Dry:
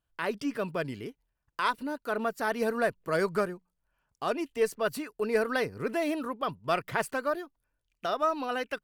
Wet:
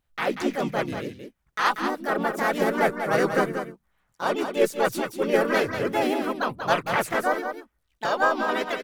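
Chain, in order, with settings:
pitch-shifted copies added −4 semitones −6 dB, −3 semitones −7 dB, +4 semitones 0 dB
single-tap delay 187 ms −7.5 dB
level +1.5 dB

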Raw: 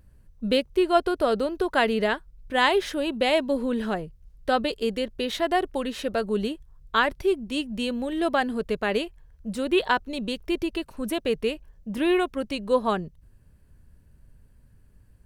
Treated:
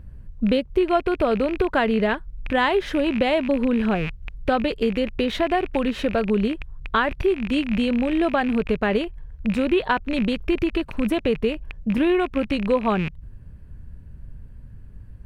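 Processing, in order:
loose part that buzzes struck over −44 dBFS, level −24 dBFS
bass and treble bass +7 dB, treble −12 dB
downward compressor 2.5 to 1, threshold −27 dBFS, peak gain reduction 9 dB
level +7.5 dB

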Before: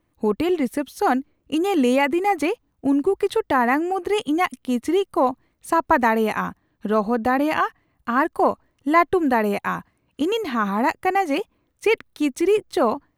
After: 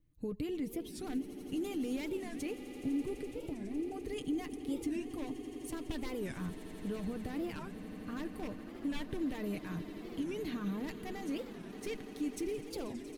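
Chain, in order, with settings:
wave folding −12 dBFS
comb filter 6.6 ms, depth 48%
brickwall limiter −18.5 dBFS, peak gain reduction 10 dB
0:03.16–0:03.92: treble cut that deepens with the level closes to 490 Hz
guitar amp tone stack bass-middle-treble 10-0-1
echo that builds up and dies away 84 ms, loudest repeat 8, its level −17 dB
wow of a warped record 45 rpm, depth 250 cents
level +9 dB

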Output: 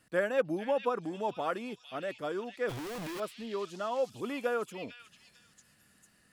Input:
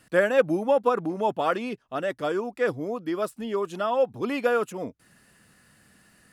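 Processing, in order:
0:02.69–0:03.20: sign of each sample alone
echo through a band-pass that steps 449 ms, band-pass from 3,400 Hz, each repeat 0.7 octaves, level −1 dB
level −8.5 dB

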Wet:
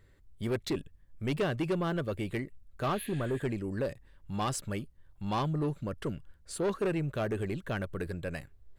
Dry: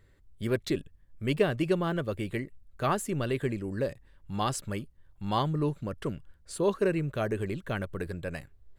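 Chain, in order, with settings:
healed spectral selection 0:02.87–0:03.37, 1,600–10,000 Hz both
soft clipping −24.5 dBFS, distortion −13 dB

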